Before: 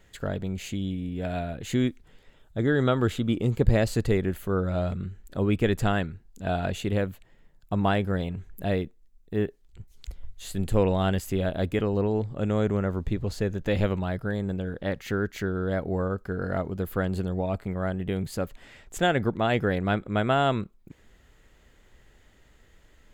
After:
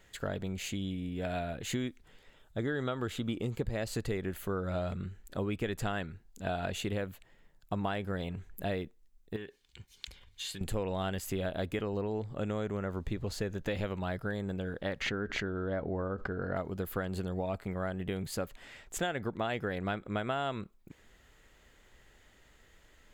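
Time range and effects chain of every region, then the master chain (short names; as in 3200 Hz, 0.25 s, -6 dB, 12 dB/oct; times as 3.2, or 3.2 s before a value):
9.36–10.61 bell 3200 Hz +13 dB 2.4 oct + compressor 8:1, threshold -34 dBFS + notch comb 660 Hz
15.01–16.56 tape spacing loss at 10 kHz 24 dB + doubler 14 ms -13 dB + backwards sustainer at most 67 dB/s
whole clip: low shelf 440 Hz -6 dB; compressor 6:1, threshold -30 dBFS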